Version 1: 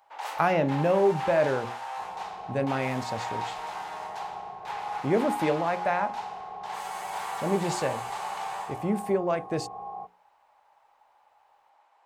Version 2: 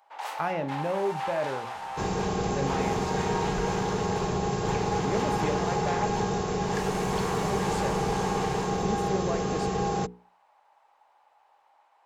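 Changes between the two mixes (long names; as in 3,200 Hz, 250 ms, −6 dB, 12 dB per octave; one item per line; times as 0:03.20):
speech −6.5 dB
second sound: remove formant resonators in series a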